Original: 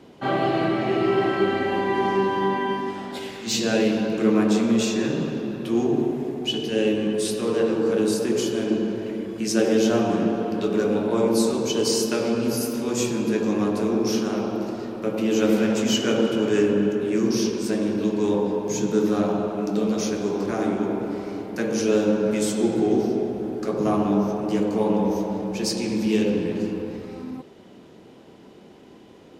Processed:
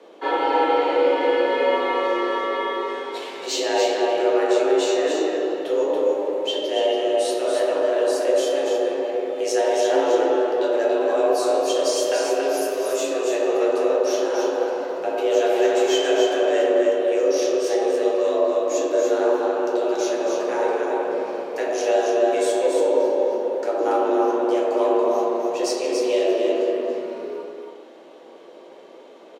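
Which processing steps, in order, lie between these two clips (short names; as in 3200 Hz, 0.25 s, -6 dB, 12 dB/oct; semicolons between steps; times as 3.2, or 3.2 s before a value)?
high shelf 9100 Hz -9 dB; notch 4900 Hz, Q 16; in parallel at -3 dB: limiter -15.5 dBFS, peak gain reduction 7.5 dB; on the sum: frequency shift +160 Hz; on a send: echo 0.282 s -5 dB; on the sum: shoebox room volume 72 m³, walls mixed, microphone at 0.61 m; gain -5 dB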